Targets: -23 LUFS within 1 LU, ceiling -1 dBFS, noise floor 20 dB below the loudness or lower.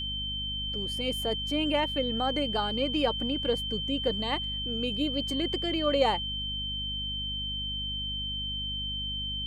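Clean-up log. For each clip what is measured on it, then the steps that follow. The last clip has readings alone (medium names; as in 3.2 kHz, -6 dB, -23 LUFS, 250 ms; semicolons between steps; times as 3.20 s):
hum 50 Hz; highest harmonic 250 Hz; hum level -36 dBFS; steady tone 3.1 kHz; tone level -32 dBFS; loudness -29.5 LUFS; peak level -12.0 dBFS; loudness target -23.0 LUFS
-> de-hum 50 Hz, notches 5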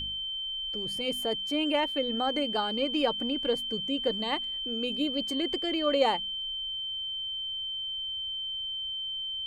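hum not found; steady tone 3.1 kHz; tone level -32 dBFS
-> band-stop 3.1 kHz, Q 30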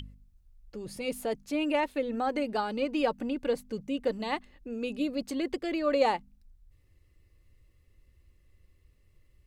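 steady tone not found; loudness -31.5 LUFS; peak level -13.5 dBFS; loudness target -23.0 LUFS
-> trim +8.5 dB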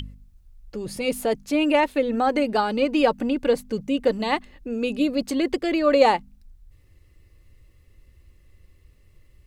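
loudness -23.0 LUFS; peak level -5.0 dBFS; noise floor -56 dBFS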